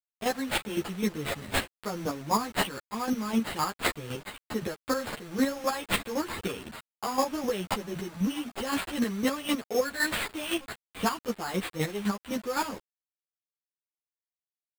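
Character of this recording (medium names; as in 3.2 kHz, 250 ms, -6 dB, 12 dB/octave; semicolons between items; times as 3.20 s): aliases and images of a low sample rate 5.9 kHz, jitter 0%; chopped level 3.9 Hz, depth 65%, duty 20%; a quantiser's noise floor 8-bit, dither none; a shimmering, thickened sound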